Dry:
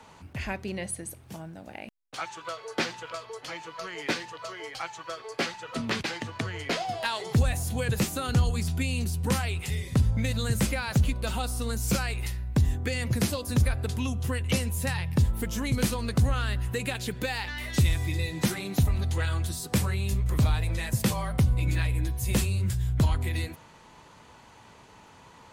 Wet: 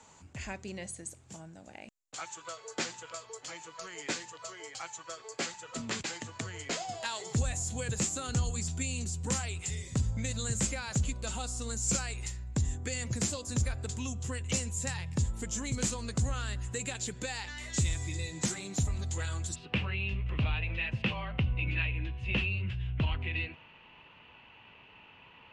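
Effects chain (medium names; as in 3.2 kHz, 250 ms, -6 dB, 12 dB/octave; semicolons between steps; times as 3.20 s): four-pole ladder low-pass 7.6 kHz, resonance 80%, from 19.54 s 2.9 kHz; trim +5 dB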